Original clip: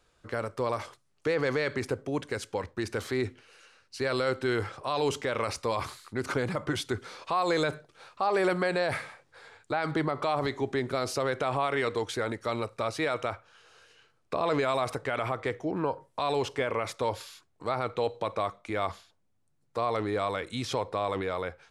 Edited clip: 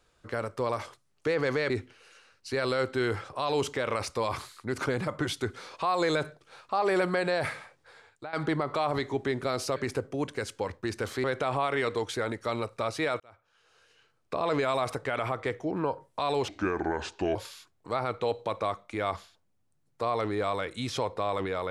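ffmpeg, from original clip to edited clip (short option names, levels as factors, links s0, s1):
-filter_complex "[0:a]asplit=8[s0][s1][s2][s3][s4][s5][s6][s7];[s0]atrim=end=1.702[s8];[s1]atrim=start=3.178:end=9.81,asetpts=PTS-STARTPTS,afade=t=out:st=5.802:d=0.83:c=qsin:silence=0.188365[s9];[s2]atrim=start=9.81:end=11.242,asetpts=PTS-STARTPTS,afade=t=in:d=0.004:c=hsin:silence=0.188365[s10];[s3]atrim=start=1.698:end=3.182[s11];[s4]atrim=start=11.238:end=13.2,asetpts=PTS-STARTPTS,afade=t=out:st=1.958:d=0.004:c=hsin[s12];[s5]atrim=start=13.2:end=16.484,asetpts=PTS-STARTPTS,afade=t=in:d=1.71:c=qsin[s13];[s6]atrim=start=16.48:end=17.11,asetpts=PTS-STARTPTS,asetrate=31752,aresample=44100[s14];[s7]atrim=start=17.106[s15];[s9][s10]concat=n=2:v=0:a=1[s16];[s8][s16]acrossfade=d=0.004:c1=hsin:c2=hsin[s17];[s17][s11]acrossfade=d=0.004:c1=hsin:c2=hsin[s18];[s12][s13]concat=n=2:v=0:a=1[s19];[s18][s19]acrossfade=d=0.004:c1=hsin:c2=hsin[s20];[s20][s14]acrossfade=d=0.004:c1=hsin:c2=hsin[s21];[s21][s15]acrossfade=d=0.004:c1=hsin:c2=hsin"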